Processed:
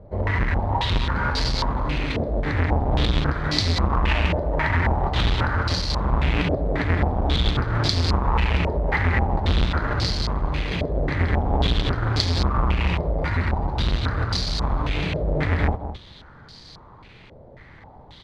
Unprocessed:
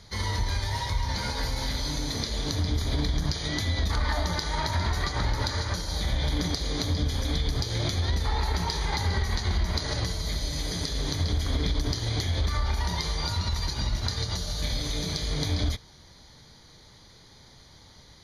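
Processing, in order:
each half-wave held at its own peak
slap from a distant wall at 36 metres, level −11 dB
low-pass on a step sequencer 3.7 Hz 600–4,700 Hz

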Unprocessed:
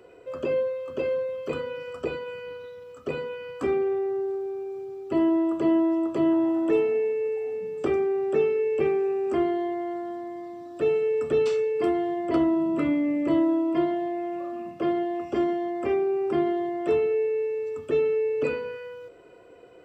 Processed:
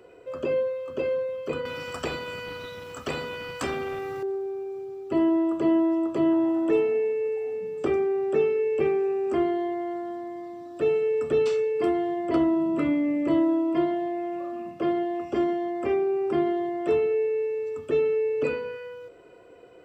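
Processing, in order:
0:01.65–0:04.23: every bin compressed towards the loudest bin 2 to 1

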